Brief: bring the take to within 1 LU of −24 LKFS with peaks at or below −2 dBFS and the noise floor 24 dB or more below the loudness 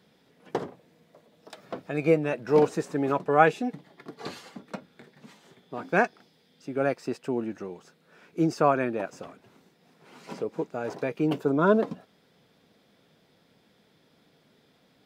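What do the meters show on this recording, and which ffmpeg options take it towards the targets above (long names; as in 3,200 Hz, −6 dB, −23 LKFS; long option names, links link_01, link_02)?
integrated loudness −26.5 LKFS; sample peak −5.0 dBFS; target loudness −24.0 LKFS
→ -af "volume=2.5dB"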